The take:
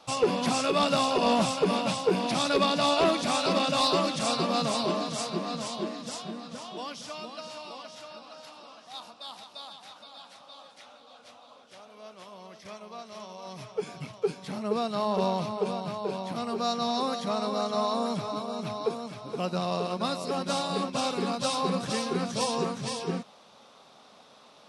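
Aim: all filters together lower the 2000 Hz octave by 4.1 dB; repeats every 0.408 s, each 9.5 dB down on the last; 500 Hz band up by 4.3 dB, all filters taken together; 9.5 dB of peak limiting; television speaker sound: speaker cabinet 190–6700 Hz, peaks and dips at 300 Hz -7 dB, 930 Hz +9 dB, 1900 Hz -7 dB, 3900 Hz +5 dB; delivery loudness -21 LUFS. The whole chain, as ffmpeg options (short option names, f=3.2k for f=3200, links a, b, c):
-af "equalizer=f=500:t=o:g=5.5,equalizer=f=2k:t=o:g=-5,alimiter=limit=-19dB:level=0:latency=1,highpass=f=190:w=0.5412,highpass=f=190:w=1.3066,equalizer=f=300:t=q:w=4:g=-7,equalizer=f=930:t=q:w=4:g=9,equalizer=f=1.9k:t=q:w=4:g=-7,equalizer=f=3.9k:t=q:w=4:g=5,lowpass=f=6.7k:w=0.5412,lowpass=f=6.7k:w=1.3066,aecho=1:1:408|816|1224|1632:0.335|0.111|0.0365|0.012,volume=7.5dB"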